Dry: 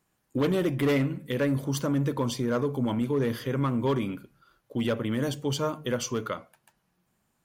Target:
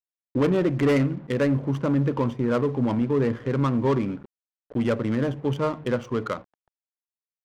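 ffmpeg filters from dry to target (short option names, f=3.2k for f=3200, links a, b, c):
-af "equalizer=f=4.3k:w=3:g=-13.5,acrusher=bits=7:mix=0:aa=0.000001,adynamicsmooth=sensitivity=5:basefreq=760,volume=4dB"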